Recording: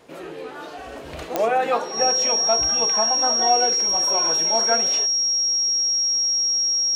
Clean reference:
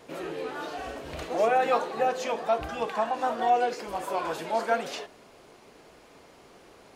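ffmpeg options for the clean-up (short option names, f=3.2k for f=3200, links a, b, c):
-af "adeclick=t=4,bandreject=f=5.6k:w=30,asetnsamples=n=441:p=0,asendcmd='0.92 volume volume -3dB',volume=0dB"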